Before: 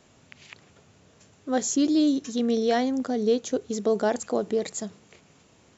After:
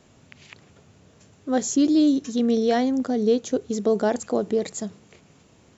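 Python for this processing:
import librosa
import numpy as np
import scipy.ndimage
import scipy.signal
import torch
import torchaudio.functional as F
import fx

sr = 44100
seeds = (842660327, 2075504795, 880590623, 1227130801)

y = fx.low_shelf(x, sr, hz=420.0, db=5.0)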